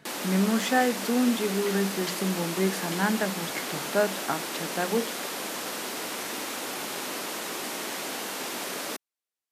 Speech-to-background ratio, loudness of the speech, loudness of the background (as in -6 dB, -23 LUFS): 4.0 dB, -28.0 LUFS, -32.0 LUFS